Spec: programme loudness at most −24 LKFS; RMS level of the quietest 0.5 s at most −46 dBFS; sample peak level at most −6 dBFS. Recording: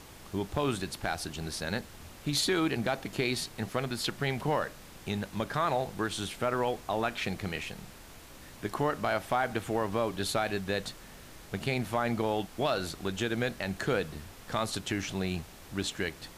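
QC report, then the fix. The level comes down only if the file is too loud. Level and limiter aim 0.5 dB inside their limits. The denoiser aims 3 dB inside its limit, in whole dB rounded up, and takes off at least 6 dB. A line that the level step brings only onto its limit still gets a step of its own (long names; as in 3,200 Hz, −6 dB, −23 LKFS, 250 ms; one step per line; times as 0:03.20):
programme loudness −32.5 LKFS: in spec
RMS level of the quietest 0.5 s −50 dBFS: in spec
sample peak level −17.0 dBFS: in spec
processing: no processing needed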